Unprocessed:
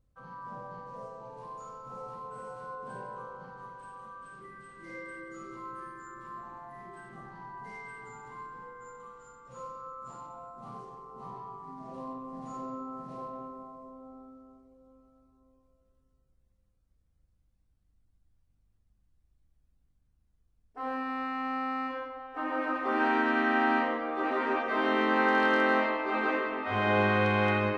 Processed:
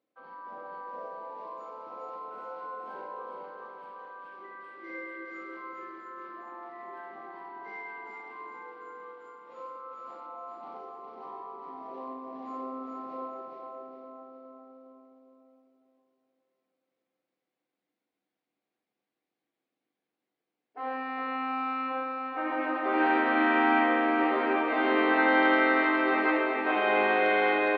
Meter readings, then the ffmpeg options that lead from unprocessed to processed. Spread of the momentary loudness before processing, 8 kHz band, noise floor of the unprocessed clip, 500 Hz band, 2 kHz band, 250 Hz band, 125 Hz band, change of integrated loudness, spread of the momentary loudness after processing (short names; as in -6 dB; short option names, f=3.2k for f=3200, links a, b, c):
21 LU, under -10 dB, -71 dBFS, +2.5 dB, +2.5 dB, +2.5 dB, under -20 dB, +3.0 dB, 21 LU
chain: -filter_complex "[0:a]highpass=f=290:w=0.5412,highpass=f=290:w=1.3066,equalizer=f=320:t=q:w=4:g=5,equalizer=f=720:t=q:w=4:g=4,equalizer=f=1.2k:t=q:w=4:g=-3,equalizer=f=2.2k:t=q:w=4:g=5,lowpass=f=4.3k:w=0.5412,lowpass=f=4.3k:w=1.3066,asplit=2[a][b];[b]aecho=0:1:412|824|1236|1648|2060:0.668|0.281|0.118|0.0495|0.0208[c];[a][c]amix=inputs=2:normalize=0"